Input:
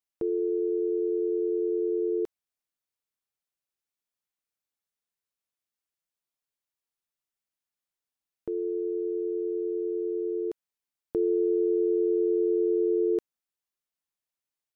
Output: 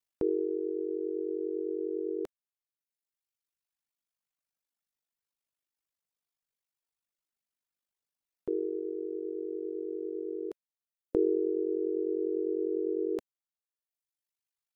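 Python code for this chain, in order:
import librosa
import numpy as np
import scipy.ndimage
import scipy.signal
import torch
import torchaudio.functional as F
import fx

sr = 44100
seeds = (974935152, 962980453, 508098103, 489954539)

y = fx.dynamic_eq(x, sr, hz=130.0, q=1.3, threshold_db=-45.0, ratio=4.0, max_db=-5)
y = fx.dereverb_blind(y, sr, rt60_s=1.7)
y = y * np.sin(2.0 * np.pi * 25.0 * np.arange(len(y)) / sr)
y = y * 10.0 ** (3.5 / 20.0)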